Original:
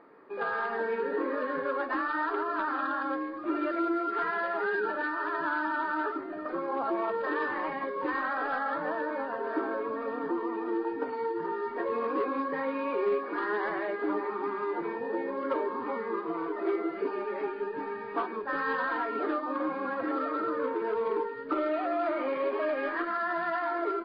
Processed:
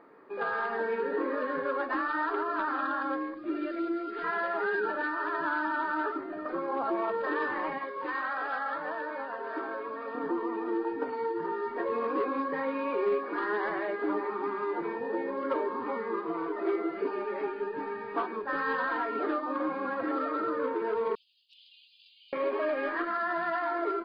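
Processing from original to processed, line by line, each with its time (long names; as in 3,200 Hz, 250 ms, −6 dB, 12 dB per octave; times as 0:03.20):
0:03.34–0:04.24: parametric band 1,000 Hz −13.5 dB 1.2 octaves
0:07.78–0:10.15: low-shelf EQ 460 Hz −10.5 dB
0:21.15–0:22.33: Butterworth high-pass 2,800 Hz 96 dB per octave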